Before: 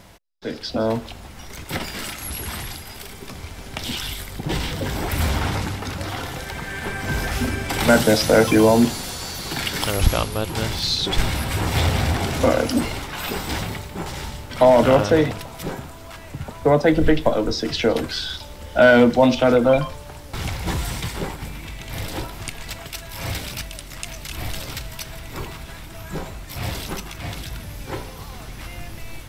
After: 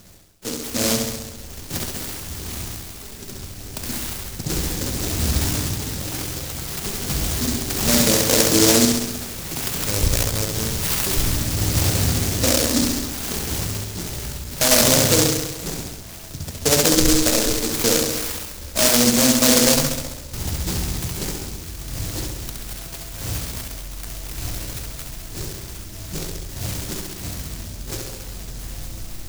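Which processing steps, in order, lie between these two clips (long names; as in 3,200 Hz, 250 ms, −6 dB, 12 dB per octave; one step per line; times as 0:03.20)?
Chebyshev low-pass filter 4,500 Hz, order 4
hum removal 140.3 Hz, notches 39
brickwall limiter −9.5 dBFS, peak gain reduction 5.5 dB
flutter between parallel walls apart 11.5 metres, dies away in 1.1 s
short delay modulated by noise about 5,700 Hz, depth 0.32 ms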